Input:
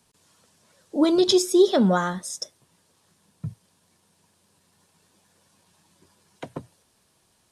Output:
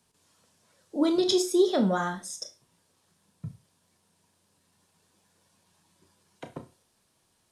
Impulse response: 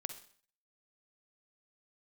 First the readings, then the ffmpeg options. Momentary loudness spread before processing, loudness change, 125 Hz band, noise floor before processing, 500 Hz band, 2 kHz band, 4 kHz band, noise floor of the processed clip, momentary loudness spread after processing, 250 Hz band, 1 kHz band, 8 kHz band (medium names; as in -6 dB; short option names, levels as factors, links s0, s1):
21 LU, -5.0 dB, -6.0 dB, -66 dBFS, -5.0 dB, -4.0 dB, -5.0 dB, -71 dBFS, 21 LU, -5.0 dB, -4.5 dB, -5.0 dB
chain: -filter_complex "[1:a]atrim=start_sample=2205,asetrate=79380,aresample=44100[s0];[0:a][s0]afir=irnorm=-1:irlink=0,volume=1.26"